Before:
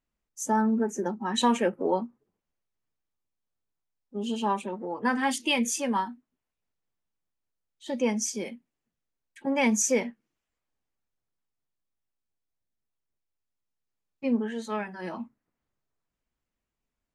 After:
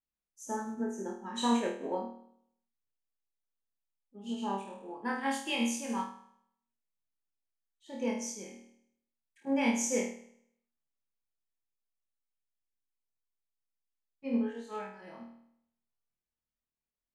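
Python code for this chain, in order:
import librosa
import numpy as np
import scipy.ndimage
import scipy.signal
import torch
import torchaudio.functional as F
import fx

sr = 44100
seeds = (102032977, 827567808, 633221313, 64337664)

y = fx.room_flutter(x, sr, wall_m=4.4, rt60_s=0.7)
y = fx.upward_expand(y, sr, threshold_db=-32.0, expansion=1.5)
y = y * 10.0 ** (-8.0 / 20.0)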